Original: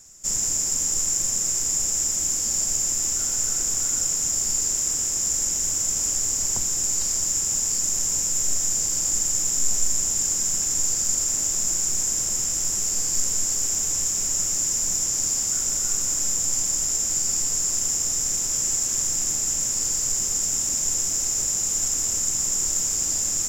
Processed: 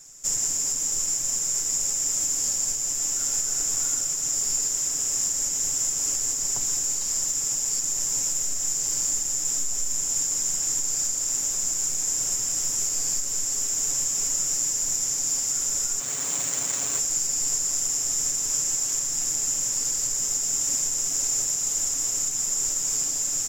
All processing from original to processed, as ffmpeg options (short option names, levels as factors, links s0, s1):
-filter_complex "[0:a]asettb=1/sr,asplit=3[s0][s1][s2];[s0]atrim=end=16.004[s3];[s1]atrim=start=16:end=16.99,asetpts=PTS-STARTPTS,afade=t=in:d=0.004:c=qsin,afade=t=out:st=0.986:d=0.004:c=qsin,highpass=75,equalizer=f=4600:t=o:w=0.44:g=-9,adynamicsmooth=sensitivity=7.5:basefreq=990[s4];[s2]atrim=start=16.986[s5];[s3][s4]acrossfade=d=0.004:c1=hsin:c2=qsin[s6];[s6][s5]acrossfade=d=0.004:c1=qsin:c2=hsin,alimiter=limit=0.15:level=0:latency=1:release=429,lowshelf=f=240:g=-5.5,aecho=1:1:7.1:0.65"